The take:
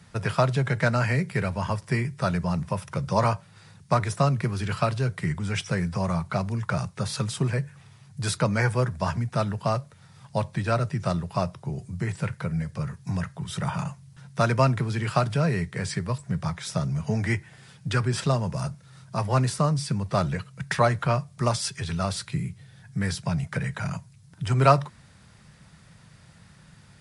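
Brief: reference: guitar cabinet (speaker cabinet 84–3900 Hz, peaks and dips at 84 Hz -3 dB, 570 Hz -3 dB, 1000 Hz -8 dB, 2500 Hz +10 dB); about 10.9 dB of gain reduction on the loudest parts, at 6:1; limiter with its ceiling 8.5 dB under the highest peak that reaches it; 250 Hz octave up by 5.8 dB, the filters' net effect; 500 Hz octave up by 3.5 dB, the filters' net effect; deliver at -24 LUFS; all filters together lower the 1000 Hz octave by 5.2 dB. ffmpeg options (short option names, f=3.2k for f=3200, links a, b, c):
-af "equalizer=f=250:t=o:g=8,equalizer=f=500:t=o:g=7.5,equalizer=f=1k:t=o:g=-7.5,acompressor=threshold=-24dB:ratio=6,alimiter=limit=-20.5dB:level=0:latency=1,highpass=84,equalizer=f=84:t=q:w=4:g=-3,equalizer=f=570:t=q:w=4:g=-3,equalizer=f=1k:t=q:w=4:g=-8,equalizer=f=2.5k:t=q:w=4:g=10,lowpass=f=3.9k:w=0.5412,lowpass=f=3.9k:w=1.3066,volume=8.5dB"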